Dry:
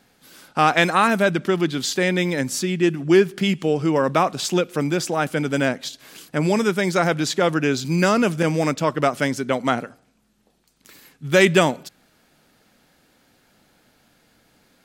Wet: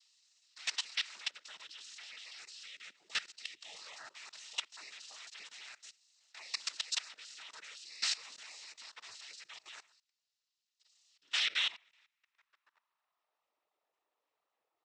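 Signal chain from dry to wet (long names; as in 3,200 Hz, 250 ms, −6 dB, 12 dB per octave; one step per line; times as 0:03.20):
gate on every frequency bin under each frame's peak −15 dB weak
band-pass filter sweep 5,100 Hz → 600 Hz, 0:11.06–0:13.63
cochlear-implant simulation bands 12
output level in coarse steps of 19 dB
high-frequency loss of the air 55 metres
level +8 dB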